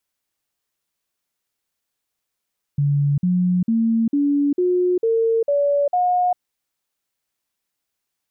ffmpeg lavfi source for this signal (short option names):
-f lavfi -i "aevalsrc='0.178*clip(min(mod(t,0.45),0.4-mod(t,0.45))/0.005,0,1)*sin(2*PI*143*pow(2,floor(t/0.45)/3)*mod(t,0.45))':d=3.6:s=44100"